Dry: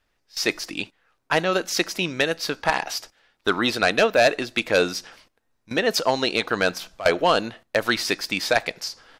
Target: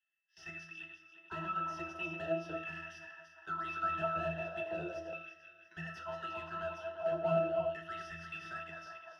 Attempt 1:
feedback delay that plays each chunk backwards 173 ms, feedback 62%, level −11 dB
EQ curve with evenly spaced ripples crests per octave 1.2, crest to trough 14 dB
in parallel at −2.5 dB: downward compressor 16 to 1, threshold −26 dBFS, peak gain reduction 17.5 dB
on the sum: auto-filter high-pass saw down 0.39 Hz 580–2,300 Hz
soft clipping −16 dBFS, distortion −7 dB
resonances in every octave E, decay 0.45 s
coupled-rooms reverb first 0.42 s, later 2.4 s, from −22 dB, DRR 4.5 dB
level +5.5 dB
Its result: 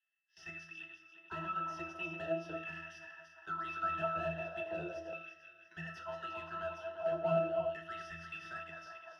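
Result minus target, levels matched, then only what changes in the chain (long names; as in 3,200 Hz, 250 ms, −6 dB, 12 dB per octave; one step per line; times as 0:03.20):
downward compressor: peak gain reduction +8.5 dB
change: downward compressor 16 to 1, threshold −17 dBFS, peak gain reduction 9 dB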